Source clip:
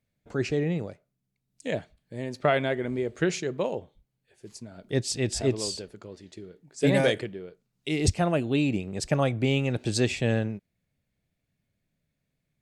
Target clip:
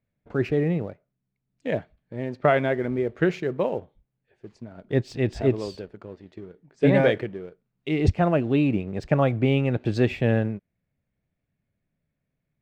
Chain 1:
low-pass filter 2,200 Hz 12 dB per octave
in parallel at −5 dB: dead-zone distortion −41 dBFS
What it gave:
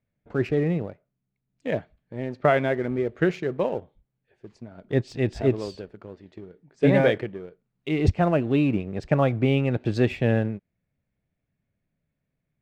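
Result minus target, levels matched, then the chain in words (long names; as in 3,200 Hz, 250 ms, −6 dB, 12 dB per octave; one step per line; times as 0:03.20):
dead-zone distortion: distortion +7 dB
low-pass filter 2,200 Hz 12 dB per octave
in parallel at −5 dB: dead-zone distortion −48.5 dBFS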